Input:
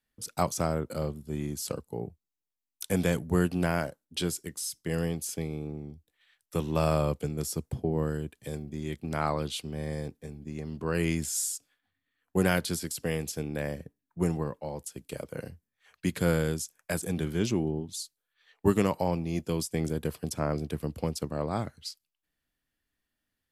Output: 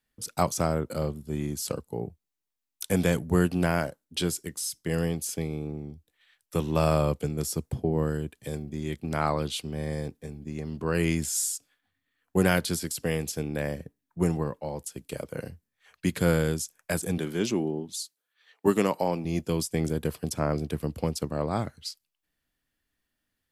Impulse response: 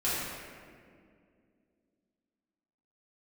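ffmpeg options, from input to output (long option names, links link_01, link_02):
-filter_complex "[0:a]asettb=1/sr,asplit=3[link_01][link_02][link_03];[link_01]atrim=end=17.184[link_04];[link_02]atrim=start=17.18:end=19.25,asetpts=PTS-STARTPTS,afade=type=in:duration=0.004:curve=qsin,afade=type=out:start_time=2.066:duration=0.004:curve=qsin,highpass=200[link_05];[link_03]atrim=start=19.246[link_06];[link_04][link_05]acrossfade=duration=0.004:curve1=hsin:curve2=qsin[link_07];[link_07][link_06]acrossfade=duration=0.004:curve1=qsin:curve2=hsin,volume=2.5dB"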